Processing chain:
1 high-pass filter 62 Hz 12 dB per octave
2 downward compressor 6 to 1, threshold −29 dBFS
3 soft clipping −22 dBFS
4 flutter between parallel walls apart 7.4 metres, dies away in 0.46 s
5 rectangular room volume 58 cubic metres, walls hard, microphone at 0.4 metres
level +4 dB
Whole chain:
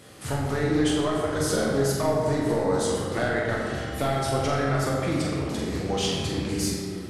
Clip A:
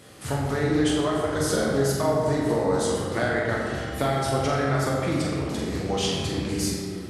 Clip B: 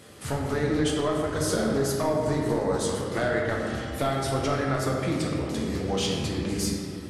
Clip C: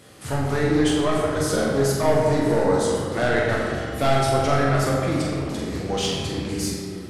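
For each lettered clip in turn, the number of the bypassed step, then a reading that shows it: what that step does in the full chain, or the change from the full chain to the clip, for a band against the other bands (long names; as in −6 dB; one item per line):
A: 3, distortion level −21 dB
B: 4, echo-to-direct ratio 4.5 dB to 2.0 dB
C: 2, average gain reduction 2.5 dB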